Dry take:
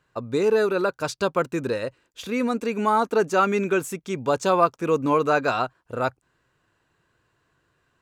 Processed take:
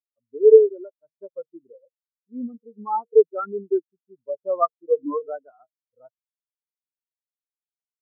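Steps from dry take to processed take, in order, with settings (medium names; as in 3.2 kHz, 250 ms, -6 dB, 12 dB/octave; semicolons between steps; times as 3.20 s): treble shelf 3.9 kHz -10.5 dB; de-hum 157.1 Hz, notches 4; spectral contrast expander 4:1; trim +4.5 dB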